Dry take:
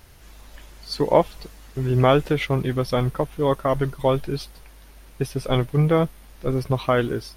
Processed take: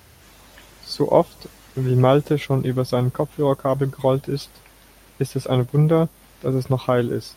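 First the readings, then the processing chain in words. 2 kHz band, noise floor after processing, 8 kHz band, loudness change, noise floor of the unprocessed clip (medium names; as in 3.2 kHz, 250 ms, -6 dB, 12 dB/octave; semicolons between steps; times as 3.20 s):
-4.5 dB, -50 dBFS, +2.0 dB, +1.5 dB, -47 dBFS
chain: high-pass 70 Hz 24 dB/octave; dynamic bell 2.1 kHz, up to -8 dB, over -39 dBFS, Q 0.72; trim +2.5 dB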